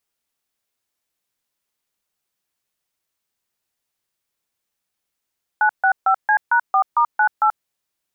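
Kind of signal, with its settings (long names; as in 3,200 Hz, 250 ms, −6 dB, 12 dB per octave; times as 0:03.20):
touch tones "965C#4*98", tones 83 ms, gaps 143 ms, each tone −15 dBFS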